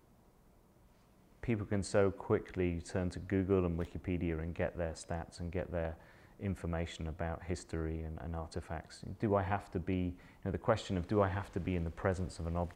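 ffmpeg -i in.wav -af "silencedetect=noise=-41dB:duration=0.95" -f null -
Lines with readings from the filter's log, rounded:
silence_start: 0.00
silence_end: 1.43 | silence_duration: 1.43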